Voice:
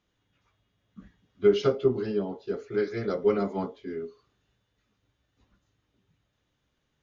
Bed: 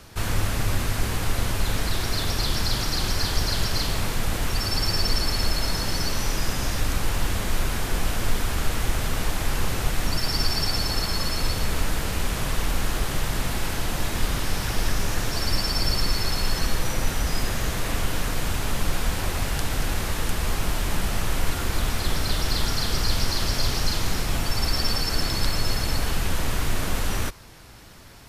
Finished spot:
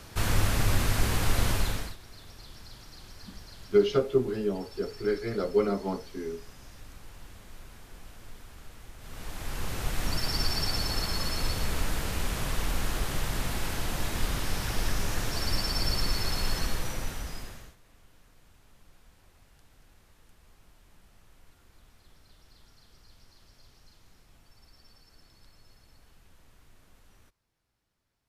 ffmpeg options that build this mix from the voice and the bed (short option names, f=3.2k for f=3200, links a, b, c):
-filter_complex "[0:a]adelay=2300,volume=-1dB[a];[1:a]volume=17.5dB,afade=t=out:st=1.51:d=0.45:silence=0.0749894,afade=t=in:st=8.98:d=1.12:silence=0.11885,afade=t=out:st=16.52:d=1.24:silence=0.0354813[b];[a][b]amix=inputs=2:normalize=0"